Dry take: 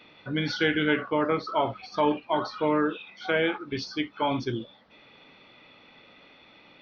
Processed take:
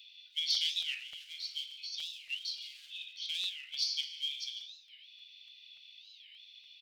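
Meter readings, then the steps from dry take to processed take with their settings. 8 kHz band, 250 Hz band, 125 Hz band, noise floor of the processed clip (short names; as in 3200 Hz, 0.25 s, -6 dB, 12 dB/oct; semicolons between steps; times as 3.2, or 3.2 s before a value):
n/a, under -40 dB, under -40 dB, -58 dBFS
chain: FDN reverb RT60 2.5 s, low-frequency decay 0.85×, high-frequency decay 0.4×, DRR 3.5 dB; in parallel at -8 dB: overloaded stage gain 25.5 dB; on the sum: steep high-pass 2900 Hz 48 dB/oct; on a send: echo 0.147 s -14.5 dB; on the sum: crackling interface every 0.29 s, samples 64, repeat, from 0.55; record warp 45 rpm, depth 250 cents; gain +1.5 dB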